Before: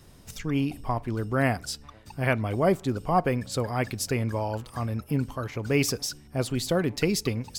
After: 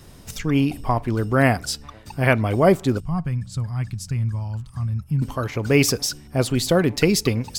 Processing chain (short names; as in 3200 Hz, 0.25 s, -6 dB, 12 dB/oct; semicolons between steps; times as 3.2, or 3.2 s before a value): 3–5.22 EQ curve 170 Hz 0 dB, 240 Hz -13 dB, 480 Hz -26 dB, 1100 Hz -14 dB, 2100 Hz -16 dB, 8500 Hz -10 dB, 14000 Hz -19 dB; gain +7 dB